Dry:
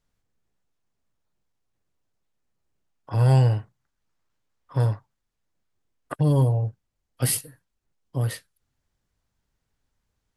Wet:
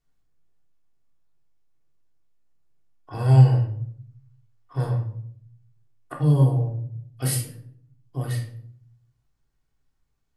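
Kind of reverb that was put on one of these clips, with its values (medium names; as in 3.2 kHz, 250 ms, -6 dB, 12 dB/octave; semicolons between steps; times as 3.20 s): simulated room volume 910 m³, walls furnished, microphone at 3.4 m; trim -6 dB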